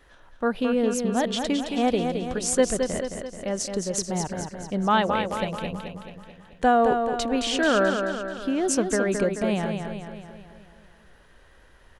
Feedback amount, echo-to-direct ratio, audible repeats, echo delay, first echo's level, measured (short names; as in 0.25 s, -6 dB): 54%, -4.5 dB, 6, 0.217 s, -6.0 dB